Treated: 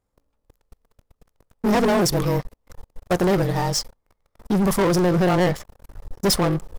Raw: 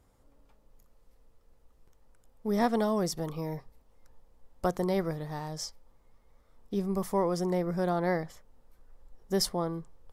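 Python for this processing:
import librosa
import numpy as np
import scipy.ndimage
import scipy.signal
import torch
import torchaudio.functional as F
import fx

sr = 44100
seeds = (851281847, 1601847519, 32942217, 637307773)

y = fx.stretch_grains(x, sr, factor=0.67, grain_ms=44.0)
y = fx.leveller(y, sr, passes=5)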